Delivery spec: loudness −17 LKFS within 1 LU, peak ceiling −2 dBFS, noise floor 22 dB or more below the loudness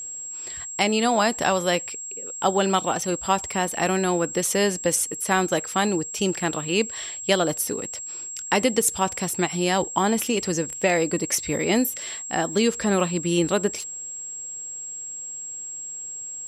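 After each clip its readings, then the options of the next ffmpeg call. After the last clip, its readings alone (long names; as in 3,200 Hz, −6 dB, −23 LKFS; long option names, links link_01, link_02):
interfering tone 7,600 Hz; level of the tone −32 dBFS; integrated loudness −24.0 LKFS; sample peak −6.0 dBFS; target loudness −17.0 LKFS
→ -af "bandreject=frequency=7600:width=30"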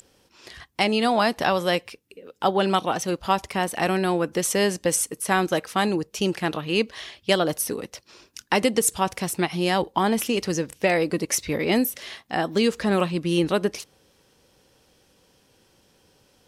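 interfering tone none found; integrated loudness −23.5 LKFS; sample peak −6.5 dBFS; target loudness −17.0 LKFS
→ -af "volume=6.5dB,alimiter=limit=-2dB:level=0:latency=1"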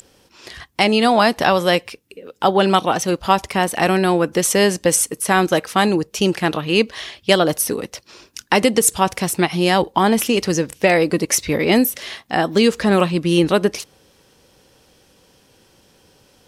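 integrated loudness −17.5 LKFS; sample peak −2.0 dBFS; background noise floor −56 dBFS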